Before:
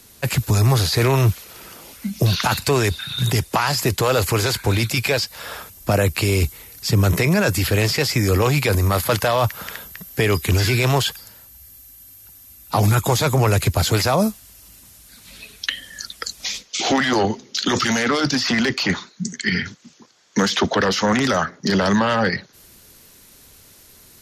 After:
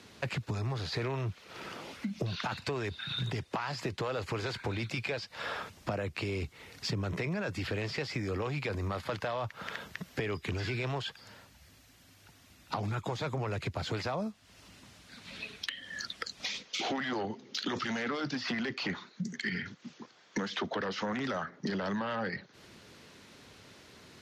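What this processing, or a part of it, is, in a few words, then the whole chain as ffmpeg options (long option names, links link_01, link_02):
AM radio: -af "highpass=110,lowpass=3600,acompressor=threshold=-33dB:ratio=5,asoftclip=type=tanh:threshold=-20.5dB"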